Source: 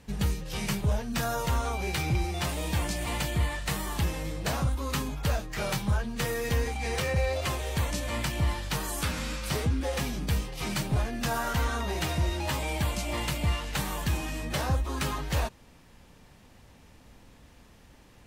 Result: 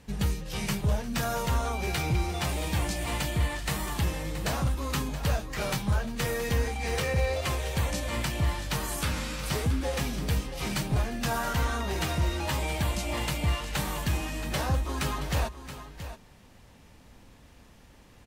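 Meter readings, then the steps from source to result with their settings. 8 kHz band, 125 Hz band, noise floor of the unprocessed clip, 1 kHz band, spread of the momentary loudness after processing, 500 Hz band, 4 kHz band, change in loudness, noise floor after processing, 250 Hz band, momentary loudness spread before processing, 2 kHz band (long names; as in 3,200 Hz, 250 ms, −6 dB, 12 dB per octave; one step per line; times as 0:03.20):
+0.5 dB, +0.5 dB, −55 dBFS, +0.5 dB, 3 LU, +0.5 dB, +0.5 dB, +0.5 dB, −54 dBFS, +0.5 dB, 3 LU, +0.5 dB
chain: multi-tap delay 352/675 ms −19/−12 dB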